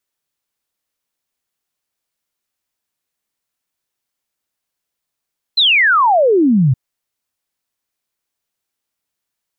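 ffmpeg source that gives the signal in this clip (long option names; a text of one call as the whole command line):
ffmpeg -f lavfi -i "aevalsrc='0.376*clip(min(t,1.17-t)/0.01,0,1)*sin(2*PI*4200*1.17/log(120/4200)*(exp(log(120/4200)*t/1.17)-1))':duration=1.17:sample_rate=44100" out.wav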